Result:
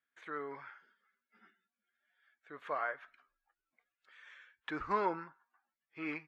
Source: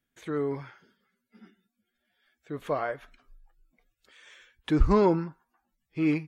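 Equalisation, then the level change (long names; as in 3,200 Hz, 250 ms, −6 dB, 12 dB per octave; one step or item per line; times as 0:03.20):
resonant band-pass 1,500 Hz, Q 1.5
0.0 dB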